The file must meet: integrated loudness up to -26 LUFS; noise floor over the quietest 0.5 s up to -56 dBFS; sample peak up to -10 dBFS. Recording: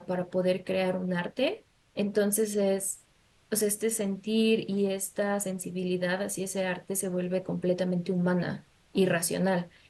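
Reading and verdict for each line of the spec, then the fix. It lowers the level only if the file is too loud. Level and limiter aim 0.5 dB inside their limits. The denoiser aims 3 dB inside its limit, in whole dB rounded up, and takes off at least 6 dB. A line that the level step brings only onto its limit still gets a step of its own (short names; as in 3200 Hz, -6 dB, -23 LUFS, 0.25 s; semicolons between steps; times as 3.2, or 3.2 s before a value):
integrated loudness -29.0 LUFS: OK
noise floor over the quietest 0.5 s -64 dBFS: OK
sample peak -13.5 dBFS: OK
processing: none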